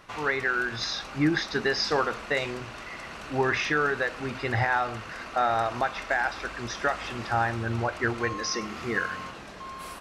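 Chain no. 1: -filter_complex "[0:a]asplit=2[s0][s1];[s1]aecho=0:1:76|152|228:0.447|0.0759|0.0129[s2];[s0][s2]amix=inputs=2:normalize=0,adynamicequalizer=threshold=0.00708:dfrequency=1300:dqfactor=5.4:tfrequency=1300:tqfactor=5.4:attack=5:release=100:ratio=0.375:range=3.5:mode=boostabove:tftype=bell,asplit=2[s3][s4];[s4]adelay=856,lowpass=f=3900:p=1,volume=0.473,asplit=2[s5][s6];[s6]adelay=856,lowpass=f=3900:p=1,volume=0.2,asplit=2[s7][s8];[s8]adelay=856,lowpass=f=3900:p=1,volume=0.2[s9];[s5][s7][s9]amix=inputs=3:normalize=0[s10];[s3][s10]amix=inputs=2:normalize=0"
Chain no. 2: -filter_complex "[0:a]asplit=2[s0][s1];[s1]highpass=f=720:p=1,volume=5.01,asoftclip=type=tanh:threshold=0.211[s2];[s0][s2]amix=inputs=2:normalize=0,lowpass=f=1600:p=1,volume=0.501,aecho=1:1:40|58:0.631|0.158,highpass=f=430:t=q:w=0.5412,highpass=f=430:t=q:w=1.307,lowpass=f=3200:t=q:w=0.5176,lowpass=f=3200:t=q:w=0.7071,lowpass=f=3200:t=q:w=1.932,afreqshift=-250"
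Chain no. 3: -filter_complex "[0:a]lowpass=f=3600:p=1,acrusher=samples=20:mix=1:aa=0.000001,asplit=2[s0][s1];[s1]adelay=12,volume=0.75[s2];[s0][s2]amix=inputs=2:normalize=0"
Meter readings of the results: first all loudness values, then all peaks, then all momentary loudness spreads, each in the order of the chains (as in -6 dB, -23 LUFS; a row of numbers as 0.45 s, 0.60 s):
-25.0 LUFS, -26.5 LUFS, -27.0 LUFS; -9.0 dBFS, -10.0 dBFS, -11.5 dBFS; 8 LU, 11 LU, 12 LU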